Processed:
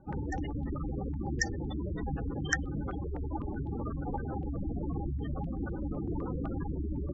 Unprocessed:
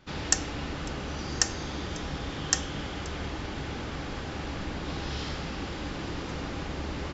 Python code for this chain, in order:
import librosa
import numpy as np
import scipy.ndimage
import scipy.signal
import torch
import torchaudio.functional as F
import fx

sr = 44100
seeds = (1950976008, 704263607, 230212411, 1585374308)

y = fx.hum_notches(x, sr, base_hz=50, count=4, at=(3.06, 3.59))
y = fx.spec_gate(y, sr, threshold_db=-10, keep='strong')
y = fx.filter_held_lowpass(y, sr, hz=7.9, low_hz=830.0, high_hz=3500.0)
y = y * 10.0 ** (2.0 / 20.0)